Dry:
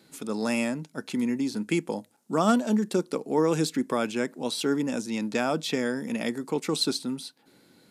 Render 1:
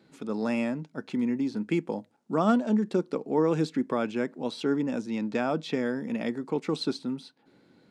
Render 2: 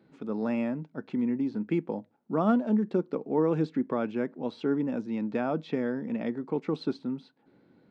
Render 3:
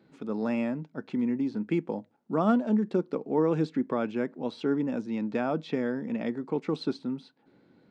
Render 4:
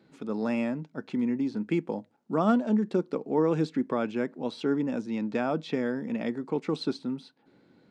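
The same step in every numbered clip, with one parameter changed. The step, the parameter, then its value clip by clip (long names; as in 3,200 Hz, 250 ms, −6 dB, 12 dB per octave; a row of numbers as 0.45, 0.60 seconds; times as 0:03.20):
head-to-tape spacing loss, at 10 kHz: 20, 46, 37, 29 decibels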